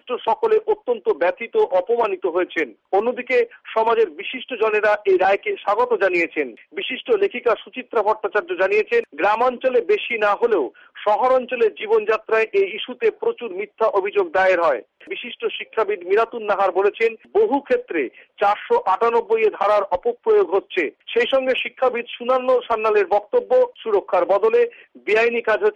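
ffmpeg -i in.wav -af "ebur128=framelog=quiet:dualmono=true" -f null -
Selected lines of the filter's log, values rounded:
Integrated loudness:
  I:         -16.8 LUFS
  Threshold: -26.9 LUFS
Loudness range:
  LRA:         1.8 LU
  Threshold: -36.9 LUFS
  LRA low:   -17.9 LUFS
  LRA high:  -16.1 LUFS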